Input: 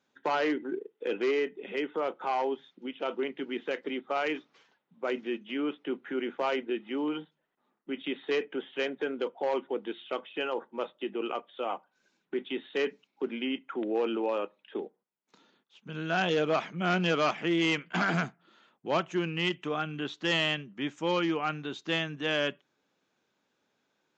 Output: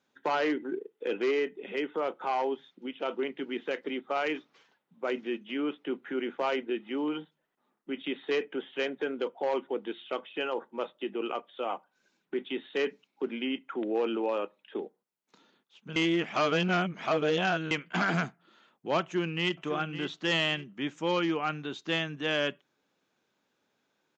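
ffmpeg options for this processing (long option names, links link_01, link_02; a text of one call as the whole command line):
ffmpeg -i in.wav -filter_complex "[0:a]asplit=2[link_01][link_02];[link_02]afade=type=in:start_time=19.01:duration=0.01,afade=type=out:start_time=19.61:duration=0.01,aecho=0:1:560|1120|1680:0.266073|0.0798218|0.0239465[link_03];[link_01][link_03]amix=inputs=2:normalize=0,asplit=3[link_04][link_05][link_06];[link_04]atrim=end=15.962[link_07];[link_05]atrim=start=15.958:end=17.712,asetpts=PTS-STARTPTS,areverse[link_08];[link_06]atrim=start=17.708[link_09];[link_07][link_08]acrossfade=duration=0.004:curve1=hsin:curve2=hsin[link_10];[link_10][link_09]acrossfade=duration=0.004:curve1=hsin:curve2=hsin" out.wav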